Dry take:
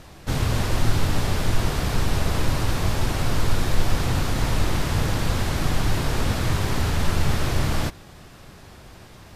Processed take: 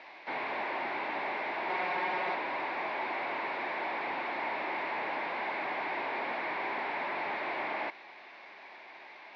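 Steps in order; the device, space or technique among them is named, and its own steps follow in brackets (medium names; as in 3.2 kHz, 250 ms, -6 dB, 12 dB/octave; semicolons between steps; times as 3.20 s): digital answering machine (band-pass 340–3300 Hz; one-bit delta coder 32 kbps, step -44.5 dBFS; cabinet simulation 480–3700 Hz, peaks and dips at 480 Hz -8 dB, 910 Hz +4 dB, 1.3 kHz -9 dB, 2.2 kHz +9 dB, 3.1 kHz -7 dB); 1.69–2.35 s: comb 5.5 ms, depth 88%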